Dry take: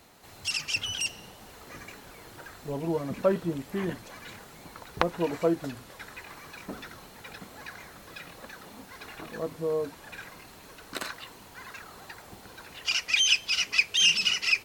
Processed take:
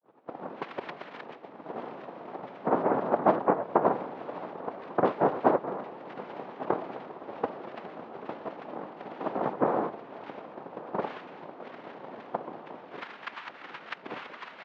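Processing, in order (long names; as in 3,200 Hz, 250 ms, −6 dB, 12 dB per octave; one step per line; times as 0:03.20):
every frequency bin delayed by itself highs late, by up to 417 ms
downward compressor 3 to 1, threshold −37 dBFS, peak gain reduction 14 dB
spectral tilt −3.5 dB per octave
mains-hum notches 50/100/150/200/250/300/350 Hz
cochlear-implant simulation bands 2
low-pass filter 3,800 Hz 24 dB per octave
downward expander −47 dBFS
single-tap delay 1,147 ms −16.5 dB
transient designer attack +8 dB, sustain +4 dB
three-way crossover with the lows and the highs turned down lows −23 dB, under 180 Hz, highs −19 dB, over 2,200 Hz
level +4.5 dB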